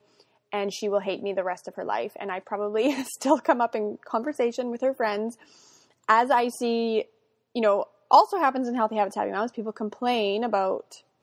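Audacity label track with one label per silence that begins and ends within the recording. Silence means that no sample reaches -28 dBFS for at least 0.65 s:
5.290000	6.090000	silence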